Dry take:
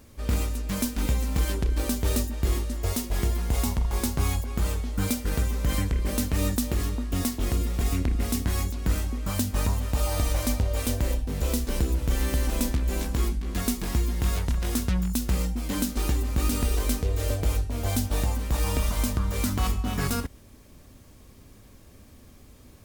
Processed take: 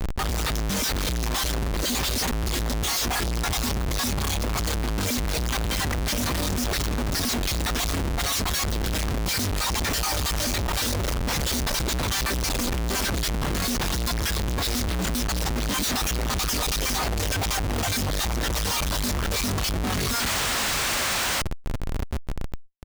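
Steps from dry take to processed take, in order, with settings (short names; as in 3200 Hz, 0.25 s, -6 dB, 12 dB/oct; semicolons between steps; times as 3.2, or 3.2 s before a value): random spectral dropouts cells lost 29%; band shelf 4700 Hz +8.5 dB 1.2 oct; in parallel at -3.5 dB: overloaded stage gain 31 dB; on the sum: reverb removal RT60 0.62 s; feedback echo 0.381 s, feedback 59%, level -21.5 dB; painted sound noise, 20.14–21.42, 510–9200 Hz -35 dBFS; dynamic EQ 1400 Hz, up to +3 dB, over -43 dBFS, Q 0.72; Schmitt trigger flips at -39.5 dBFS; fast leveller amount 70%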